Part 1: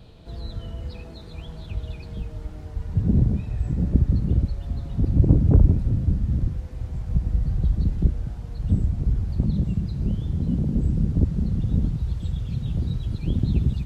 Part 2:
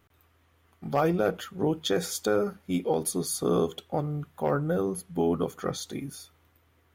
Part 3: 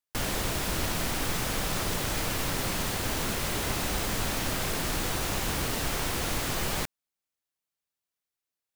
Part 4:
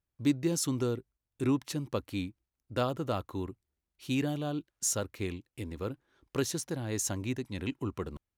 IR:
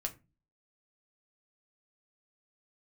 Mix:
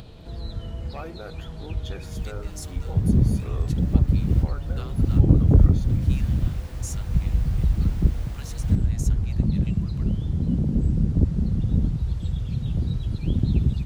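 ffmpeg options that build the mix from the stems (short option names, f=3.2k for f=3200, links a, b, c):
-filter_complex "[0:a]volume=0.5dB[a];[1:a]equalizer=f=1.8k:w=0.45:g=6.5,volume=-16.5dB,asplit=2[b][c];[2:a]equalizer=f=13k:t=o:w=1.9:g=-6,adelay=1900,volume=-16.5dB[d];[3:a]highpass=1.3k,adelay=2000,volume=-6.5dB[e];[c]apad=whole_len=469742[f];[d][f]sidechaincompress=threshold=-47dB:ratio=8:attack=16:release=421[g];[a][b][g][e]amix=inputs=4:normalize=0,acompressor=mode=upward:threshold=-37dB:ratio=2.5"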